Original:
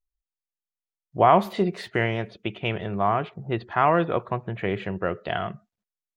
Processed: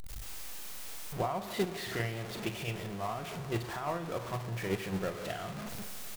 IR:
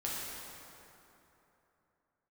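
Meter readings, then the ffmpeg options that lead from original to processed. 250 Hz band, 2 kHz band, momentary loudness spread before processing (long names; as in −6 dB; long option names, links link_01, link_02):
−9.5 dB, −9.5 dB, 12 LU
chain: -filter_complex "[0:a]aeval=exprs='val(0)+0.5*0.0891*sgn(val(0))':channel_layout=same,alimiter=limit=-12dB:level=0:latency=1:release=173,acompressor=threshold=-32dB:ratio=2,asplit=2[link_01][link_02];[link_02]adelay=42,volume=-8.5dB[link_03];[link_01][link_03]amix=inputs=2:normalize=0,agate=range=-12dB:threshold=-26dB:ratio=16:detection=peak,asplit=2[link_04][link_05];[1:a]atrim=start_sample=2205[link_06];[link_05][link_06]afir=irnorm=-1:irlink=0,volume=-14.5dB[link_07];[link_04][link_07]amix=inputs=2:normalize=0"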